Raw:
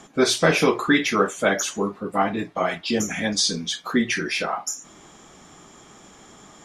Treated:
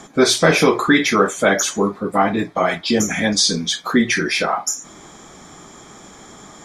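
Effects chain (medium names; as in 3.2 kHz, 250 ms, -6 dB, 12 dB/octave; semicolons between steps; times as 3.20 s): band-stop 2.8 kHz, Q 6.6; in parallel at -3 dB: peak limiter -15 dBFS, peak gain reduction 9 dB; on the sum: trim +2 dB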